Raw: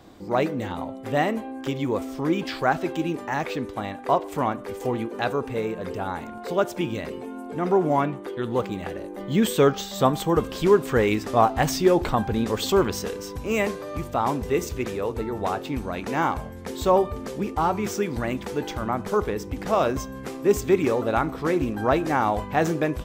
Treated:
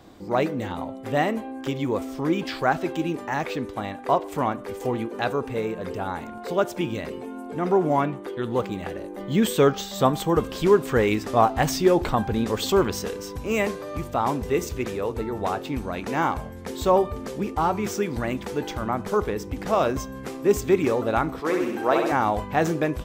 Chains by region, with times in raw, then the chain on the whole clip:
0:21.40–0:22.12: high-pass filter 300 Hz + flutter between parallel walls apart 11.2 metres, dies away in 0.88 s
whole clip: no processing

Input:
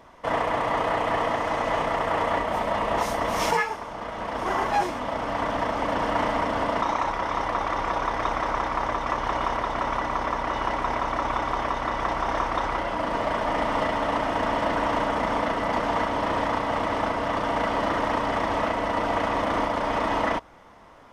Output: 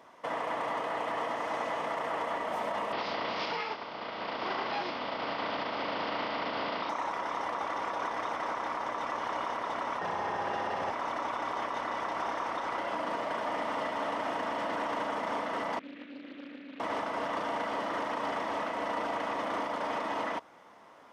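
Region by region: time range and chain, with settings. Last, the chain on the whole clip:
0:02.91–0:06.89: compressing power law on the bin magnitudes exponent 0.66 + Chebyshev low-pass filter 4,900 Hz, order 5 + notch filter 1,700 Hz, Q 16
0:09.99–0:10.91: high-shelf EQ 10,000 Hz −6.5 dB + frequency shifter −130 Hz + flutter between parallel walls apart 11 metres, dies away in 1.2 s
0:15.79–0:16.80: formant filter i + high-frequency loss of the air 150 metres + highs frequency-modulated by the lows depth 0.42 ms
whole clip: Bessel high-pass filter 250 Hz, order 2; brickwall limiter −20.5 dBFS; level −4 dB

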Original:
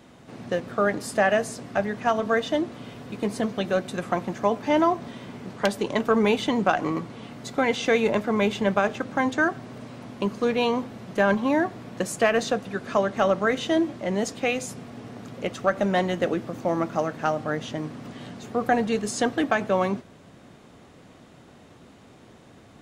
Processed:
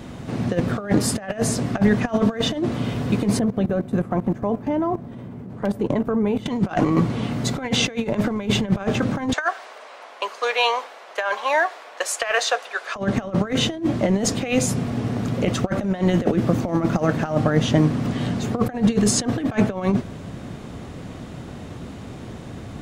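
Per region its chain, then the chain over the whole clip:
0:03.39–0:06.46: parametric band 5,000 Hz −14.5 dB 3 octaves + output level in coarse steps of 17 dB
0:09.33–0:12.96: Bessel high-pass filter 920 Hz, order 6 + high-shelf EQ 9,100 Hz −7 dB + one half of a high-frequency compander decoder only
whole clip: compressor whose output falls as the input rises −28 dBFS, ratio −0.5; low-shelf EQ 190 Hz +11.5 dB; level +6 dB

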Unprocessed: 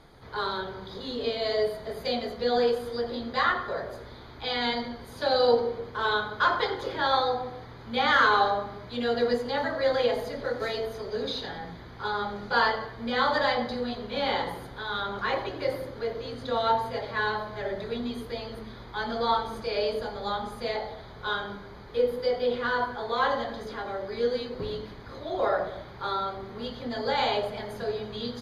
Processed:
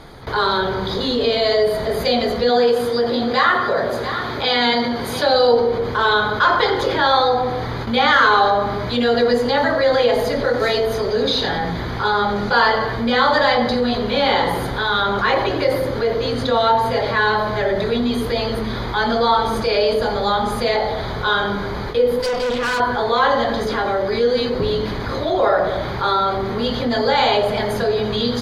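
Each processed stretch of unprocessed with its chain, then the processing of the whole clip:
0:02.49–0:05.26: high-pass filter 110 Hz + single-tap delay 688 ms −18 dB
0:22.20–0:22.80: high-shelf EQ 5,800 Hz +5.5 dB + notch filter 390 Hz, Q 5.5 + tube saturation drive 32 dB, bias 0.75
whole clip: noise gate with hold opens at −36 dBFS; envelope flattener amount 50%; level +6.5 dB

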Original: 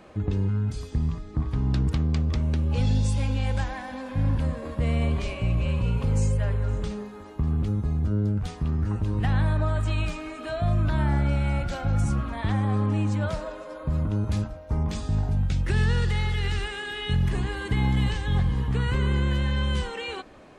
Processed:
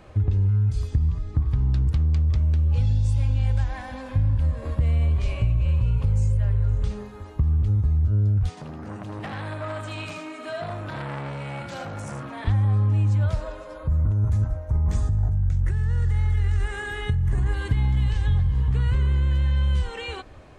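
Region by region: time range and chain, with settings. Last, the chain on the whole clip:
0:08.49–0:12.47: high-pass filter 180 Hz 24 dB per octave + single-tap delay 80 ms −5 dB + saturating transformer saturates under 1,300 Hz
0:13.87–0:17.54: flat-topped bell 3,500 Hz −9 dB 1.3 octaves + compressor whose output falls as the input rises −27 dBFS
whole clip: low shelf with overshoot 140 Hz +9.5 dB, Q 1.5; downward compressor, threshold −18 dBFS

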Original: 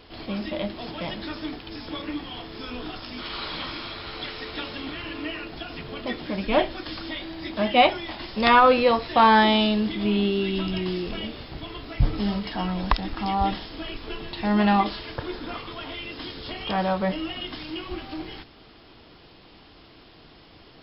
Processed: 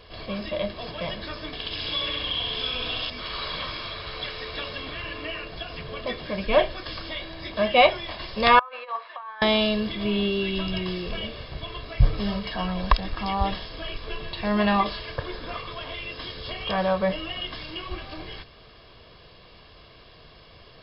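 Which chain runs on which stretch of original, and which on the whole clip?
0:01.53–0:03.10: parametric band 3,200 Hz +13 dB 0.94 octaves + downward compressor 2 to 1, threshold −30 dBFS + flutter between parallel walls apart 11.3 metres, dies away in 1.4 s
0:08.59–0:09.42: compressor whose output falls as the input rises −21 dBFS, ratio −0.5 + four-pole ladder band-pass 1,300 Hz, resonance 35%
whole clip: parametric band 320 Hz −3 dB 0.61 octaves; comb filter 1.8 ms, depth 53%

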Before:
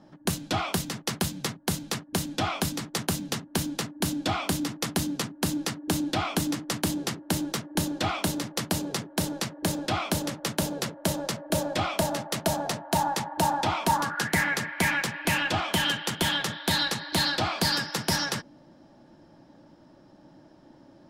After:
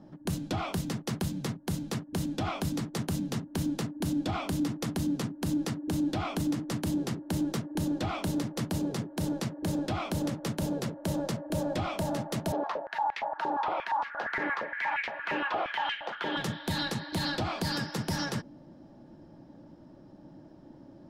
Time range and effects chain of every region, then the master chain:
0:12.52–0:16.37: high-frequency loss of the air 270 metres + high-pass on a step sequencer 8.6 Hz 400–2,200 Hz
whole clip: tilt shelving filter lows +5.5 dB, about 680 Hz; brickwall limiter −21 dBFS; level −1 dB

